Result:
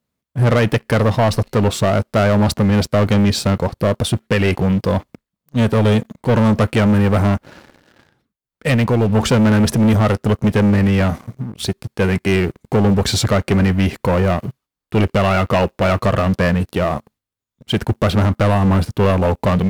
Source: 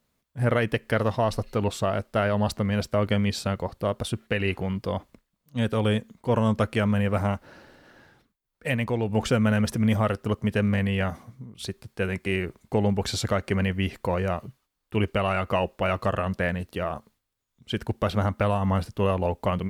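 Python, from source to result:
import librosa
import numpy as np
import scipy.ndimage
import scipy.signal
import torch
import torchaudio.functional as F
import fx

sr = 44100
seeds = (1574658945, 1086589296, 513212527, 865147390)

y = fx.highpass(x, sr, hz=150.0, slope=6)
y = fx.low_shelf(y, sr, hz=250.0, db=10.0)
y = fx.leveller(y, sr, passes=3)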